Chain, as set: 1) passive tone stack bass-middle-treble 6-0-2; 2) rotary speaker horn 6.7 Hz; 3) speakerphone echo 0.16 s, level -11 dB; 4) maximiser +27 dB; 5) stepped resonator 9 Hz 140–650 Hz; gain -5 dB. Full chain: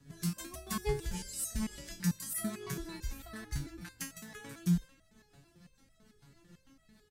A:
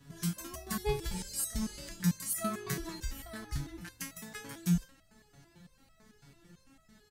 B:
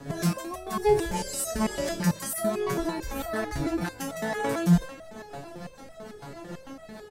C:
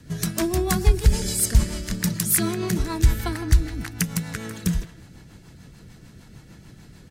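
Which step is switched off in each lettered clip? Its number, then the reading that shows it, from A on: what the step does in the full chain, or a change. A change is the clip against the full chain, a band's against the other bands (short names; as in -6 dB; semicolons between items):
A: 2, 1 kHz band +2.0 dB; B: 1, 1 kHz band +8.0 dB; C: 5, 250 Hz band -3.0 dB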